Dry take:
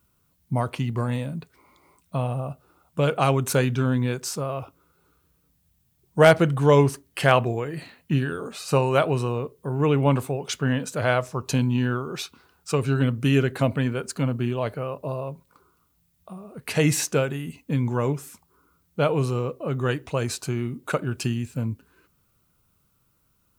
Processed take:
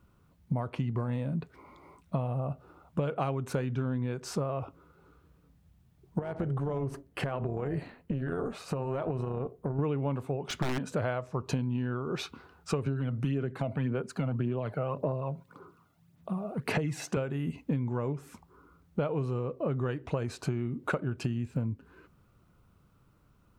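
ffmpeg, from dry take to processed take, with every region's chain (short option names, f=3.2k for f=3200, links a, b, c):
-filter_complex "[0:a]asettb=1/sr,asplit=3[a][b][c];[a]atrim=end=6.194[d];[b]atrim=start=6.19:end=9.79,asetpts=PTS-STARTPTS,afade=t=in:d=0.004:c=qsin,afade=t=out:st=3.596:d=0.004:c=qsin,equalizer=f=3.7k:t=o:w=2.5:g=-5,acompressor=threshold=-28dB:ratio=10:attack=3.2:release=140:knee=1:detection=peak,tremolo=f=270:d=0.571[e];[c]atrim=start=9.786[f];[d][e]acrossfade=d=0.004:c1=hsin:c2=qsin[g];[g][f]acrossfade=d=0.004:c1=qsin:c2=hsin,asettb=1/sr,asplit=3[h][i][j];[h]atrim=end=10.414[k];[i]atrim=start=10.41:end=10.88,asetpts=PTS-STARTPTS,afade=t=in:d=0.004:c=qsin,afade=t=out:st=0.466:d=0.004:c=qsin,aeval=exprs='(mod(7.94*val(0)+1,2)-1)/7.94':c=same,equalizer=f=490:t=o:w=0.21:g=-12.5[l];[j]atrim=start=10.876[m];[k][l]acrossfade=d=0.004:c1=hsin:c2=qsin[n];[n][m]acrossfade=d=0.004:c1=qsin:c2=hsin,asettb=1/sr,asplit=3[o][p][q];[o]atrim=end=12.864[r];[p]atrim=start=12.86:end=17.17,asetpts=PTS-STARTPTS,afade=t=in:d=0.004:c=qsin,afade=t=out:st=4.306:d=0.004:c=qsin,highpass=f=110:w=0.5412,highpass=f=110:w=1.3066,acompressor=threshold=-23dB:ratio=2:attack=3.2:release=140:knee=1:detection=peak,aphaser=in_gain=1:out_gain=1:delay=1.5:decay=0.51:speed=1.8:type=sinusoidal[s];[q]atrim=start=17.166[t];[r][s]acrossfade=d=0.004:c1=hsin:c2=qsin[u];[u][t]acrossfade=d=0.004:c1=qsin:c2=hsin,lowpass=f=1.3k:p=1,acompressor=threshold=-34dB:ratio=12,volume=6.5dB"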